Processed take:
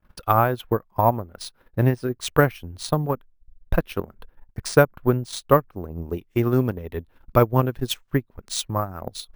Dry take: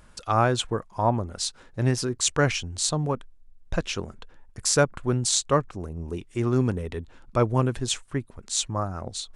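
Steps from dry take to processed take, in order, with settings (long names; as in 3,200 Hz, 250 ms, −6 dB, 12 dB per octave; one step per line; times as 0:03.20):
downward expander −45 dBFS
high-shelf EQ 4,400 Hz −12 dB, from 0:05.92 −3 dB
transient designer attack +7 dB, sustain −10 dB
high-frequency loss of the air 50 metres
bad sample-rate conversion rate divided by 3×, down filtered, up hold
level +1 dB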